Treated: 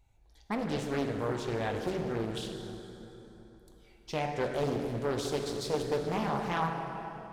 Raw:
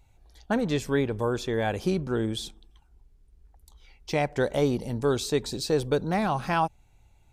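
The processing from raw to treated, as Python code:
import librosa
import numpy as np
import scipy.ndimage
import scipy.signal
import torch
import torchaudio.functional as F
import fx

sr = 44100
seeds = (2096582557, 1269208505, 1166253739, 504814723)

y = fx.rev_plate(x, sr, seeds[0], rt60_s=3.7, hf_ratio=0.65, predelay_ms=0, drr_db=2.0)
y = fx.doppler_dist(y, sr, depth_ms=0.6)
y = y * 10.0 ** (-7.5 / 20.0)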